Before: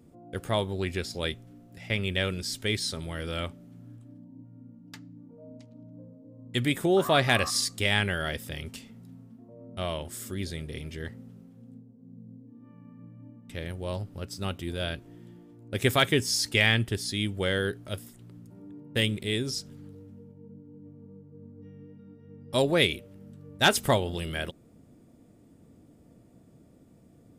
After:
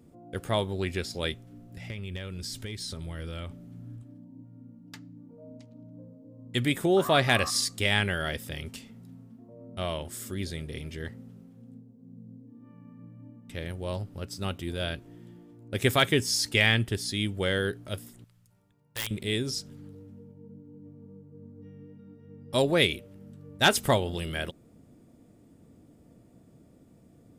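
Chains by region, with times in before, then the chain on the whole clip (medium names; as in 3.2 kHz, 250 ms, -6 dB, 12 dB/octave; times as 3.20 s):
1.52–4.03 s: bass shelf 140 Hz +9 dB + compression 16:1, threshold -32 dBFS + hard clipper -28 dBFS
18.24–19.11 s: amplifier tone stack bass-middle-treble 10-0-10 + integer overflow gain 23 dB
whole clip: none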